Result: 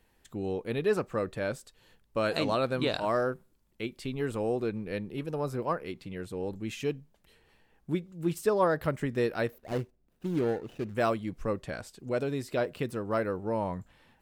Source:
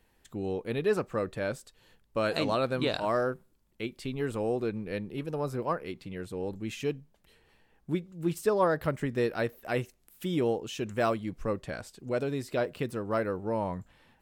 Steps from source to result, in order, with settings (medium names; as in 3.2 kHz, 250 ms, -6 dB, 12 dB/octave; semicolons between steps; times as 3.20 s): 9.58–10.95 s: median filter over 41 samples